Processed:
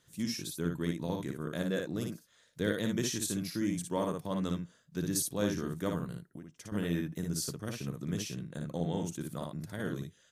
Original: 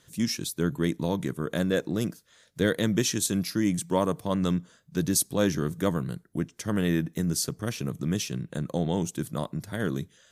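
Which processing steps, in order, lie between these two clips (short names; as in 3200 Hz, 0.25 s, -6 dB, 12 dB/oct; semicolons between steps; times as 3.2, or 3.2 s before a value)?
early reflections 58 ms -4 dB, 71 ms -17.5 dB; 6.22–6.72 compressor 8:1, threshold -35 dBFS, peak gain reduction 12.5 dB; gain -8.5 dB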